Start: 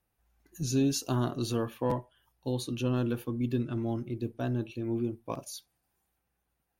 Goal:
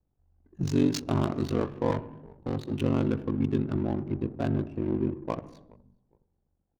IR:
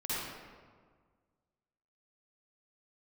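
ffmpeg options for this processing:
-filter_complex "[0:a]asplit=2[a][b];[b]alimiter=level_in=5dB:limit=-24dB:level=0:latency=1:release=376,volume=-5dB,volume=-1.5dB[c];[a][c]amix=inputs=2:normalize=0,asettb=1/sr,asplit=3[d][e][f];[d]atrim=end=1.914[g];[e]atrim=start=1.91:end=2.73,asetpts=PTS-STARTPTS,afade=t=in:d=0.004:c=qsin,afade=t=out:st=0.816:d=0.004:c=qsin,asoftclip=type=hard:threshold=-27dB[h];[f]atrim=start=2.726[i];[g][h]acrossfade=d=0.004:c1=hsin:c2=qsin[j];[j][i]acrossfade=d=0.004:c1=qsin:c2=hsin,asettb=1/sr,asplit=3[k][l][m];[k]atrim=end=4.634[n];[l]atrim=start=4.63:end=5.33,asetpts=PTS-STARTPTS,afade=t=in:d=0.004:c=qsin,afade=t=out:st=0.696:d=0.004:c=qsin,asuperstop=centerf=3500:order=20:qfactor=2.5[o];[m]atrim=start=5.326[p];[n][o]acrossfade=d=0.004:c1=hsin:c2=qsin[q];[q][p]acrossfade=d=0.004:c1=qsin:c2=hsin,aeval=exprs='val(0)*sin(2*PI*24*n/s)':c=same,asplit=3[r][s][t];[s]adelay=414,afreqshift=-66,volume=-23dB[u];[t]adelay=828,afreqshift=-132,volume=-32.4dB[v];[r][u][v]amix=inputs=3:normalize=0,asplit=2[w][x];[1:a]atrim=start_sample=2205,afade=t=out:st=0.41:d=0.01,atrim=end_sample=18522[y];[x][y]afir=irnorm=-1:irlink=0,volume=-18dB[z];[w][z]amix=inputs=2:normalize=0,adynamicsmooth=sensitivity=7:basefreq=530,volume=3dB"

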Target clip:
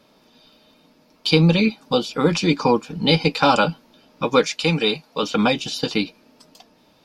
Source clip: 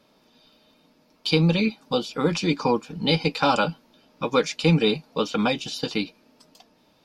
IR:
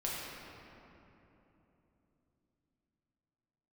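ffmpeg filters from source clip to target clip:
-filter_complex "[0:a]asettb=1/sr,asplit=3[a][b][c];[a]atrim=end=4.444[d];[b]atrim=start=4.44:end=5.23,asetpts=PTS-STARTPTS,afade=t=in:d=0.004:c=qsin,afade=t=out:st=0.786:d=0.004:c=qsin,lowshelf=f=470:g=-8.5[e];[c]atrim=start=5.226[f];[d][e]acrossfade=d=0.004:c1=hsin:c2=qsin[g];[g][f]acrossfade=d=0.004:c1=qsin:c2=hsin,volume=4.5dB"

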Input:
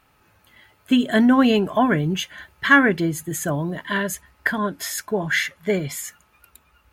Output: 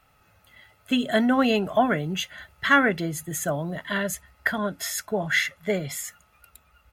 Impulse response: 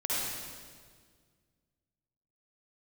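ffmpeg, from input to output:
-filter_complex "[0:a]aecho=1:1:1.5:0.43,acrossover=split=210|2700[a][b][c];[a]alimiter=level_in=5.5dB:limit=-24dB:level=0:latency=1,volume=-5.5dB[d];[d][b][c]amix=inputs=3:normalize=0,volume=-2.5dB"

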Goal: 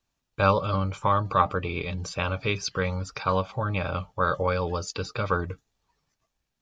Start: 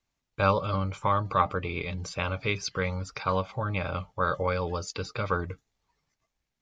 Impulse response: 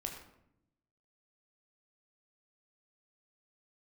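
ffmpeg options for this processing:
-af "bandreject=f=2.1k:w=9.8,volume=2.5dB"

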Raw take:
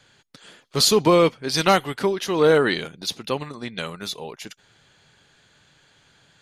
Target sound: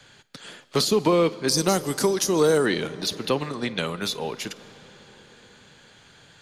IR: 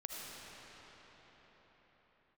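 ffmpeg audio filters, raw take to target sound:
-filter_complex "[0:a]asettb=1/sr,asplit=3[a][b][c];[a]atrim=end=1.484[d];[b]atrim=start=1.48:end=2.66,asetpts=PTS-STARTPTS,afade=t=in:d=0.004:c=qsin,afade=t=out:st=1.176:d=0.004:c=qsin,highshelf=f=4.4k:t=q:w=1.5:g=13.5[e];[c]atrim=start=2.656[f];[d][e]acrossfade=d=0.004:c1=hsin:c2=qsin[g];[g][f]acrossfade=d=0.004:c1=qsin:c2=hsin,acrossover=split=170|500[h][i][j];[h]acompressor=threshold=-43dB:ratio=4[k];[i]acompressor=threshold=-26dB:ratio=4[l];[j]acompressor=threshold=-30dB:ratio=4[m];[k][l][m]amix=inputs=3:normalize=0,asplit=2[n][o];[1:a]atrim=start_sample=2205,adelay=52[p];[o][p]afir=irnorm=-1:irlink=0,volume=-16dB[q];[n][q]amix=inputs=2:normalize=0,volume=5dB"

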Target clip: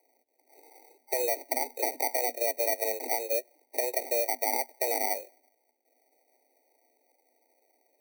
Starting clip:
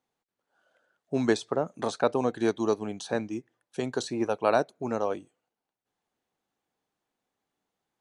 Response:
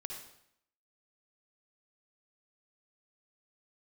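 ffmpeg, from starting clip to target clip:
-af "equalizer=f=530:t=o:w=2.8:g=9,acrusher=samples=35:mix=1:aa=0.000001,alimiter=limit=-22dB:level=0:latency=1:release=301,acompressor=threshold=-39dB:ratio=2,aemphasis=mode=production:type=50fm,afreqshift=240,afftfilt=real='re*eq(mod(floor(b*sr/1024/940),2),0)':imag='im*eq(mod(floor(b*sr/1024/940),2),0)':win_size=1024:overlap=0.75,volume=7.5dB"

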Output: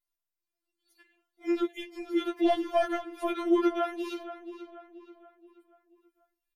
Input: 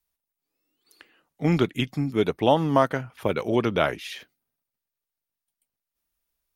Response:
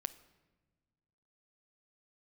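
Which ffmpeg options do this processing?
-filter_complex "[0:a]asettb=1/sr,asplit=3[a][b][c];[a]atrim=end=1.964[d];[b]atrim=start=1.96:end=3.68,asetpts=PTS-STARTPTS,afade=t=in:d=0.004:c=qsin,afade=t=out:st=1.716:d=0.004:c=qsin,acontrast=69[e];[c]atrim=start=3.676[f];[d][e]acrossfade=d=0.004:c1=hsin:c2=qsin[g];[g][f]acrossfade=d=0.004:c1=qsin:c2=hsin,flanger=delay=9.3:depth=2.9:regen=-86:speed=0.62:shape=sinusoidal,asplit=2[h][i];[i]adelay=480,lowpass=f=3.4k:p=1,volume=-12dB,asplit=2[j][k];[k]adelay=480,lowpass=f=3.4k:p=1,volume=0.45,asplit=2[l][m];[m]adelay=480,lowpass=f=3.4k:p=1,volume=0.45,asplit=2[n][o];[o]adelay=480,lowpass=f=3.4k:p=1,volume=0.45,asplit=2[p][q];[q]adelay=480,lowpass=f=3.4k:p=1,volume=0.45[r];[j][l][n][p][r]amix=inputs=5:normalize=0[s];[h][s]amix=inputs=2:normalize=0,afftfilt=real='re*4*eq(mod(b,16),0)':imag='im*4*eq(mod(b,16),0)':win_size=2048:overlap=0.75,volume=-3dB"

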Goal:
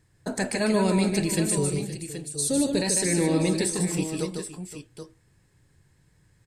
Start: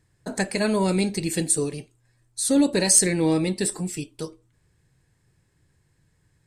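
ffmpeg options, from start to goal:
-filter_complex "[0:a]asettb=1/sr,asplit=3[a][b][c];[a]atrim=end=1.574[d];[b]atrim=start=1.57:end=2.82,asetpts=PTS-STARTPTS,afade=t=in:d=0.004:c=qsin,afade=t=out:st=1.246:d=0.004:c=qsin,equalizer=f=125:t=o:w=1:g=7,equalizer=f=250:t=o:w=1:g=-7,equalizer=f=1k:t=o:w=1:g=-7,equalizer=f=2k:t=o:w=1:g=-7[e];[c]atrim=start=2.816[f];[d][e]acrossfade=d=0.004:c1=hsin:c2=qsin[g];[g][f]acrossfade=d=0.004:c1=qsin:c2=hsin,alimiter=limit=-18dB:level=0:latency=1:release=56,aecho=1:1:150|521|778:0.562|0.178|0.316,volume=1.5dB"

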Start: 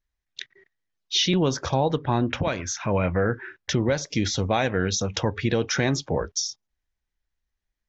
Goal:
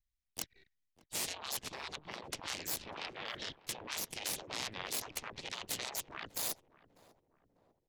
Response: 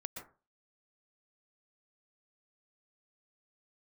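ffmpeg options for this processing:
-filter_complex "[0:a]asplit=4[a][b][c][d];[b]asetrate=35002,aresample=44100,atempo=1.25992,volume=-13dB[e];[c]asetrate=52444,aresample=44100,atempo=0.840896,volume=-11dB[f];[d]asetrate=55563,aresample=44100,atempo=0.793701,volume=-15dB[g];[a][e][f][g]amix=inputs=4:normalize=0,equalizer=f=510:w=0.93:g=-9,areverse,acompressor=threshold=-36dB:ratio=16,areverse,aeval=exprs='0.075*(cos(1*acos(clip(val(0)/0.075,-1,1)))-cos(1*PI/2))+0.00596*(cos(5*acos(clip(val(0)/0.075,-1,1)))-cos(5*PI/2))+0.00335*(cos(6*acos(clip(val(0)/0.075,-1,1)))-cos(6*PI/2))+0.0168*(cos(7*acos(clip(val(0)/0.075,-1,1)))-cos(7*PI/2))+0.0133*(cos(8*acos(clip(val(0)/0.075,-1,1)))-cos(8*PI/2))':c=same,acrossover=split=360|1700[h][i][j];[i]adynamicsmooth=sensitivity=5:basefreq=800[k];[h][k][j]amix=inputs=3:normalize=0,afftfilt=real='re*lt(hypot(re,im),0.0126)':imag='im*lt(hypot(re,im),0.0126)':win_size=1024:overlap=0.75,asplit=2[l][m];[m]adelay=596,lowpass=f=840:p=1,volume=-16dB,asplit=2[n][o];[o]adelay=596,lowpass=f=840:p=1,volume=0.55,asplit=2[p][q];[q]adelay=596,lowpass=f=840:p=1,volume=0.55,asplit=2[r][s];[s]adelay=596,lowpass=f=840:p=1,volume=0.55,asplit=2[t][u];[u]adelay=596,lowpass=f=840:p=1,volume=0.55[v];[l][n][p][r][t][v]amix=inputs=6:normalize=0,volume=8.5dB"

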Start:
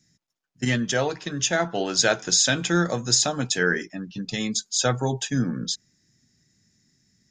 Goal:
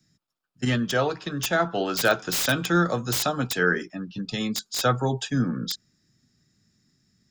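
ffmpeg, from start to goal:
-filter_complex "[0:a]equalizer=f=1.25k:t=o:w=0.33:g=7,equalizer=f=2k:t=o:w=0.33:g=-6,equalizer=f=6.3k:t=o:w=0.33:g=-9,acrossover=split=320|370|2500[a][b][c][d];[d]aeval=exprs='(mod(10*val(0)+1,2)-1)/10':c=same[e];[a][b][c][e]amix=inputs=4:normalize=0"

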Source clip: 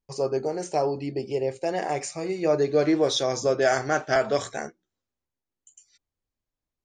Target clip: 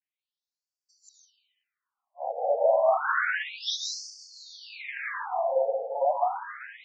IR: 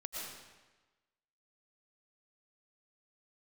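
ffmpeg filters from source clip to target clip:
-filter_complex "[0:a]areverse,asplit=2[a][b];[b]highpass=f=720:p=1,volume=17dB,asoftclip=type=tanh:threshold=-10dB[c];[a][c]amix=inputs=2:normalize=0,lowpass=f=1.9k:p=1,volume=-6dB[d];[1:a]atrim=start_sample=2205,asetrate=34398,aresample=44100[e];[d][e]afir=irnorm=-1:irlink=0,afftfilt=real='re*between(b*sr/1024,630*pow(6300/630,0.5+0.5*sin(2*PI*0.3*pts/sr))/1.41,630*pow(6300/630,0.5+0.5*sin(2*PI*0.3*pts/sr))*1.41)':imag='im*between(b*sr/1024,630*pow(6300/630,0.5+0.5*sin(2*PI*0.3*pts/sr))/1.41,630*pow(6300/630,0.5+0.5*sin(2*PI*0.3*pts/sr))*1.41)':win_size=1024:overlap=0.75"

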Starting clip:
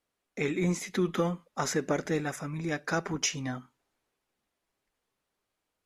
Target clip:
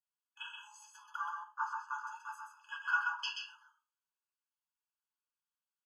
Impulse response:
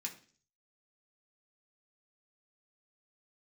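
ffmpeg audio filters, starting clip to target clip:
-filter_complex "[0:a]afwtdn=0.02,acrossover=split=4000[a][b];[b]acompressor=threshold=-55dB:ratio=4:attack=1:release=60[c];[a][c]amix=inputs=2:normalize=0,asettb=1/sr,asplit=3[d][e][f];[d]atrim=end=1.444[g];[e]atrim=start=1.44:end=1.89,asetpts=PTS-STARTPTS,afade=t=in:d=0.004:c=qsin,afade=t=out:st=0.446:d=0.004:c=qsin,equalizer=f=11k:t=o:w=2:g=-12.5[h];[f]atrim=start=1.886[i];[g][h]acrossfade=d=0.004:c1=hsin:c2=qsin[j];[j][i]acrossfade=d=0.004:c1=qsin:c2=hsin,aecho=1:1:130:0.596[k];[1:a]atrim=start_sample=2205,atrim=end_sample=6174[l];[k][l]afir=irnorm=-1:irlink=0,afftfilt=real='re*eq(mod(floor(b*sr/1024/860),2),1)':imag='im*eq(mod(floor(b*sr/1024/860),2),1)':win_size=1024:overlap=0.75,volume=3.5dB"

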